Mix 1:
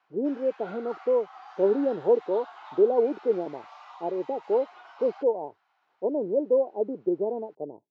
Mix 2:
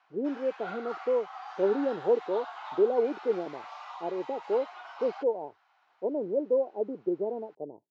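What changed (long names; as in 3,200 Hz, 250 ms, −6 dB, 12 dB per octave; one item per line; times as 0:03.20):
speech −3.5 dB
background +4.0 dB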